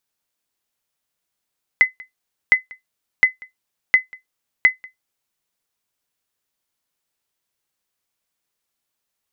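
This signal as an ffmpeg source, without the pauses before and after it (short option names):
-f lavfi -i "aevalsrc='0.708*(sin(2*PI*2030*mod(t,0.71))*exp(-6.91*mod(t,0.71)/0.14)+0.0531*sin(2*PI*2030*max(mod(t,0.71)-0.19,0))*exp(-6.91*max(mod(t,0.71)-0.19,0)/0.14))':d=3.55:s=44100"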